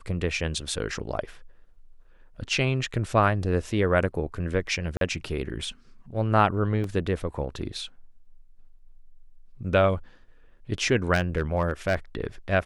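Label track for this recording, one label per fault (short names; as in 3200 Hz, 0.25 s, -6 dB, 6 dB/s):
4.970000	5.010000	gap 42 ms
6.840000	6.840000	gap 2.7 ms
11.130000	11.960000	clipped -17 dBFS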